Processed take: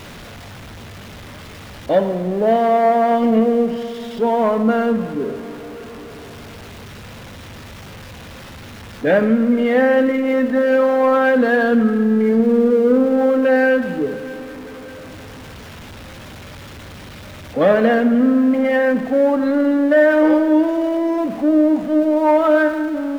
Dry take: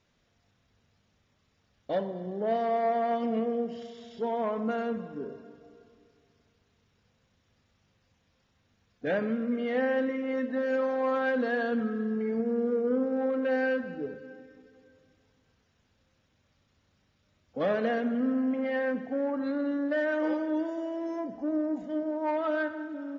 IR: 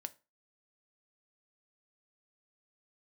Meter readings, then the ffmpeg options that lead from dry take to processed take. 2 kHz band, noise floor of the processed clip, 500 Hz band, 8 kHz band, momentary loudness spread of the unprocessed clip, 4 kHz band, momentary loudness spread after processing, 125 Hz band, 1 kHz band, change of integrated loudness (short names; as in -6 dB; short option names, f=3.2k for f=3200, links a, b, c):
+13.0 dB, -36 dBFS, +14.0 dB, n/a, 9 LU, +14.0 dB, 17 LU, +16.0 dB, +13.5 dB, +14.0 dB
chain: -filter_complex "[0:a]aeval=exprs='val(0)+0.5*0.00708*sgn(val(0))':c=same,asplit=2[a][b];[1:a]atrim=start_sample=2205,lowpass=4.1k[c];[b][c]afir=irnorm=-1:irlink=0,volume=2dB[d];[a][d]amix=inputs=2:normalize=0,volume=8dB"